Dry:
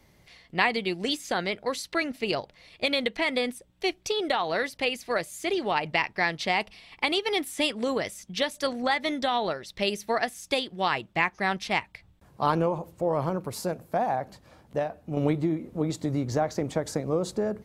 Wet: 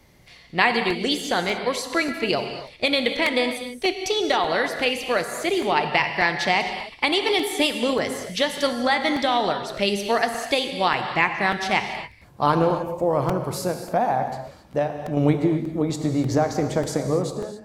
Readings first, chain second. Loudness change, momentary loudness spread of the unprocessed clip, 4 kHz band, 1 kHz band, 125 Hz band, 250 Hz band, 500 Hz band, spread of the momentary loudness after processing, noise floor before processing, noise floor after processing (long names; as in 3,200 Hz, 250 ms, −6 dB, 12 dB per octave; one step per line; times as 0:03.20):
+5.5 dB, 6 LU, +5.5 dB, +5.5 dB, +5.5 dB, +5.5 dB, +5.0 dB, 6 LU, −60 dBFS, −49 dBFS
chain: fade-out on the ending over 0.56 s
reverb whose tail is shaped and stops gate 300 ms flat, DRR 6 dB
regular buffer underruns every 0.59 s, samples 128, repeat, from 0:00.90
level +4.5 dB